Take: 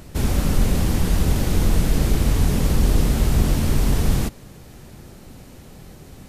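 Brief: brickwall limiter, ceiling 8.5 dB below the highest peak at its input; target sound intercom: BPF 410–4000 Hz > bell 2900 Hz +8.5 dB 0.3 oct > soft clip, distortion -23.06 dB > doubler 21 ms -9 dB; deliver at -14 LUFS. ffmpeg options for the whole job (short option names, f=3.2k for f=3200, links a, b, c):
-filter_complex "[0:a]alimiter=limit=-13dB:level=0:latency=1,highpass=410,lowpass=4k,equalizer=f=2.9k:t=o:w=0.3:g=8.5,asoftclip=threshold=-23.5dB,asplit=2[a][b];[b]adelay=21,volume=-9dB[c];[a][c]amix=inputs=2:normalize=0,volume=19.5dB"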